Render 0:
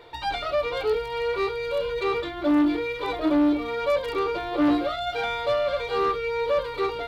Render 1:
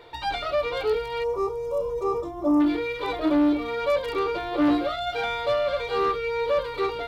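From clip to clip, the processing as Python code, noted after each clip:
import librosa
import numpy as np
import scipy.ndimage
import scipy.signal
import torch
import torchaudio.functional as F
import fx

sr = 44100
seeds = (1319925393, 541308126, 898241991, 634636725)

y = fx.spec_box(x, sr, start_s=1.24, length_s=1.37, low_hz=1300.0, high_hz=5000.0, gain_db=-21)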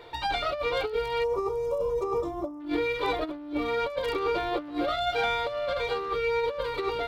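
y = fx.over_compress(x, sr, threshold_db=-26.0, ratio=-0.5)
y = y * 10.0 ** (-1.5 / 20.0)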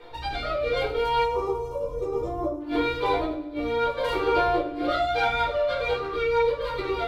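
y = fx.rotary_switch(x, sr, hz=0.65, then_hz=6.3, switch_at_s=4.51)
y = fx.echo_feedback(y, sr, ms=101, feedback_pct=51, wet_db=-16)
y = fx.room_shoebox(y, sr, seeds[0], volume_m3=230.0, walls='furnished', distance_m=3.8)
y = y * 10.0 ** (-3.0 / 20.0)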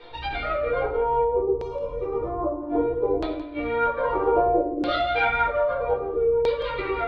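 y = fx.filter_lfo_lowpass(x, sr, shape='saw_down', hz=0.62, low_hz=360.0, high_hz=4300.0, q=1.7)
y = y + 10.0 ** (-14.0 / 20.0) * np.pad(y, (int(171 * sr / 1000.0), 0))[:len(y)]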